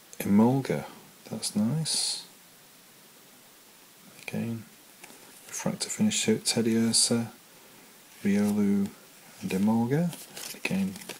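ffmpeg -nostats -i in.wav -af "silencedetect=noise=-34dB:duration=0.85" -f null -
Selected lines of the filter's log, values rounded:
silence_start: 2.20
silence_end: 4.19 | silence_duration: 1.99
silence_start: 7.27
silence_end: 8.24 | silence_duration: 0.97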